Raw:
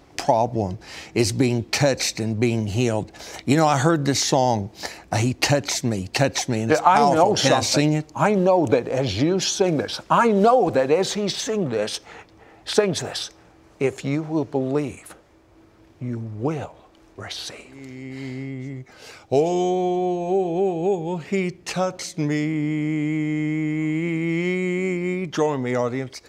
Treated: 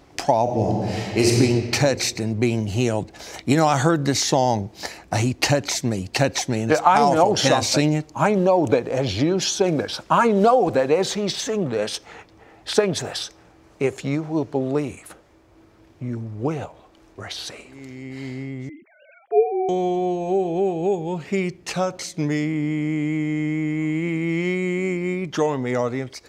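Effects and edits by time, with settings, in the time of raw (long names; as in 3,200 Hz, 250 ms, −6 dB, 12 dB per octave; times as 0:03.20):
0:00.42–0:01.31: thrown reverb, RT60 2.3 s, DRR −2.5 dB
0:18.69–0:19.69: three sine waves on the formant tracks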